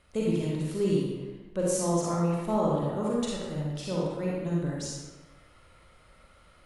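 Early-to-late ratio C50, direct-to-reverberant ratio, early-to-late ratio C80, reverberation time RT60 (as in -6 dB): -2.5 dB, -5.0 dB, 1.0 dB, 1.3 s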